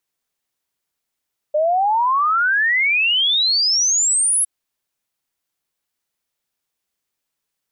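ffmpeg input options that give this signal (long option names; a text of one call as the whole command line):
ffmpeg -f lavfi -i "aevalsrc='0.2*clip(min(t,2.91-t)/0.01,0,1)*sin(2*PI*590*2.91/log(11000/590)*(exp(log(11000/590)*t/2.91)-1))':duration=2.91:sample_rate=44100" out.wav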